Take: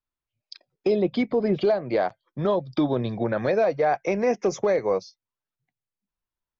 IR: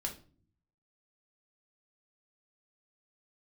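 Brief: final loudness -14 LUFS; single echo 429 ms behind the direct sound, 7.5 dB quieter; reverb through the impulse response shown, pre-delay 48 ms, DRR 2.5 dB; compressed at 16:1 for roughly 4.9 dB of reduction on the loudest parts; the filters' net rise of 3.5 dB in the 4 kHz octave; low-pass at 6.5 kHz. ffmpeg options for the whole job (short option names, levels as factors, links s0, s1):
-filter_complex "[0:a]lowpass=6500,equalizer=f=4000:t=o:g=5,acompressor=threshold=0.0794:ratio=16,aecho=1:1:429:0.422,asplit=2[s0][s1];[1:a]atrim=start_sample=2205,adelay=48[s2];[s1][s2]afir=irnorm=-1:irlink=0,volume=0.708[s3];[s0][s3]amix=inputs=2:normalize=0,volume=3.76"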